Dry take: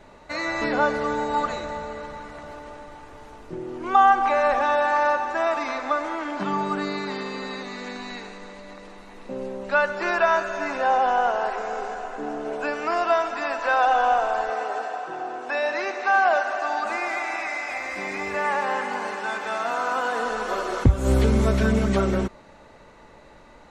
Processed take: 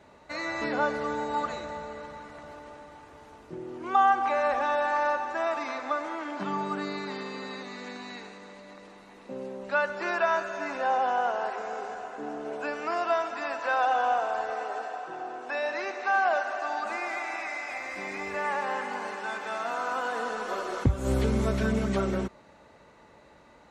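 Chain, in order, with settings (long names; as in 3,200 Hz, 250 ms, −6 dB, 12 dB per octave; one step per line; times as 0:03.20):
high-pass filter 62 Hz
level −5.5 dB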